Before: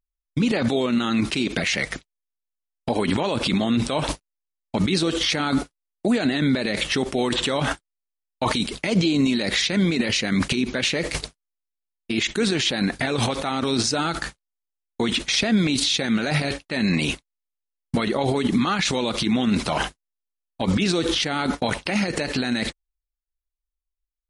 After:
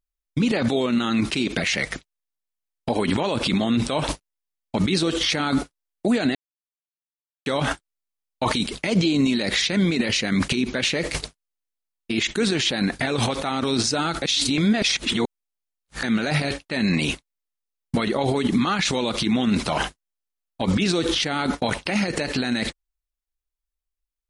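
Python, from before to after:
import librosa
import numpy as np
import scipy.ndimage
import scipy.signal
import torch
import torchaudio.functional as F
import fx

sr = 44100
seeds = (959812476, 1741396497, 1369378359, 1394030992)

y = fx.edit(x, sr, fx.silence(start_s=6.35, length_s=1.11),
    fx.reverse_span(start_s=14.22, length_s=1.81), tone=tone)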